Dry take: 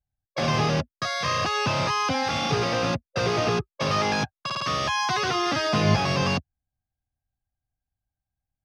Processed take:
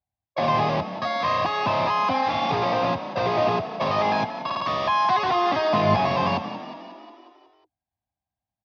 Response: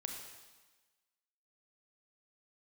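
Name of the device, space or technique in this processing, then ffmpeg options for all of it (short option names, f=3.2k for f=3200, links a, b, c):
frequency-shifting delay pedal into a guitar cabinet: -filter_complex "[0:a]asplit=8[a][b][c][d][e][f][g][h];[b]adelay=181,afreqshift=32,volume=-12dB[i];[c]adelay=362,afreqshift=64,volume=-16.3dB[j];[d]adelay=543,afreqshift=96,volume=-20.6dB[k];[e]adelay=724,afreqshift=128,volume=-24.9dB[l];[f]adelay=905,afreqshift=160,volume=-29.2dB[m];[g]adelay=1086,afreqshift=192,volume=-33.5dB[n];[h]adelay=1267,afreqshift=224,volume=-37.8dB[o];[a][i][j][k][l][m][n][o]amix=inputs=8:normalize=0,highpass=97,equalizer=f=140:t=q:w=4:g=-7,equalizer=f=450:t=q:w=4:g=-4,equalizer=f=680:t=q:w=4:g=8,equalizer=f=1k:t=q:w=4:g=9,equalizer=f=1.4k:t=q:w=4:g=-8,equalizer=f=2.9k:t=q:w=4:g=-4,lowpass=f=4.1k:w=0.5412,lowpass=f=4.1k:w=1.3066"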